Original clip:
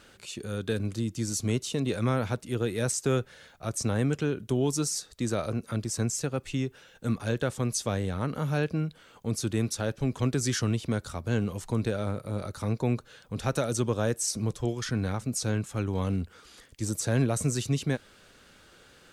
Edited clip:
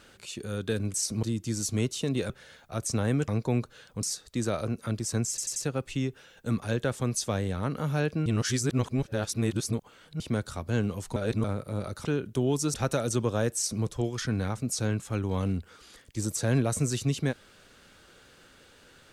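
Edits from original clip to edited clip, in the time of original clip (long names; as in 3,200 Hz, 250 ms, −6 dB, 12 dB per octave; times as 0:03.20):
0:02.01–0:03.21: remove
0:04.19–0:04.88: swap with 0:12.63–0:13.38
0:06.14: stutter 0.09 s, 4 plays
0:08.84–0:10.78: reverse
0:11.74–0:12.02: reverse
0:14.19–0:14.48: duplicate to 0:00.94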